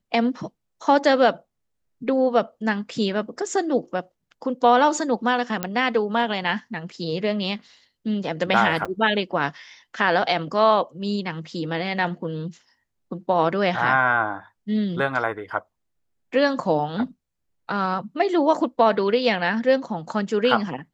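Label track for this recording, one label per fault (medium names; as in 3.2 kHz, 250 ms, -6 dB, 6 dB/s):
5.630000	5.630000	pop -9 dBFS
8.850000	8.860000	dropout 5.6 ms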